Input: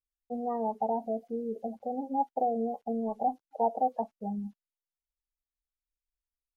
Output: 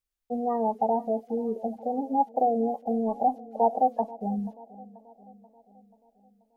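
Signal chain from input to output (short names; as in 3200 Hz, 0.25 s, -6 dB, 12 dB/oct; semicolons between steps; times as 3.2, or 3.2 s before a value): darkening echo 0.484 s, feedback 58%, low-pass 1500 Hz, level -19 dB; gain +5 dB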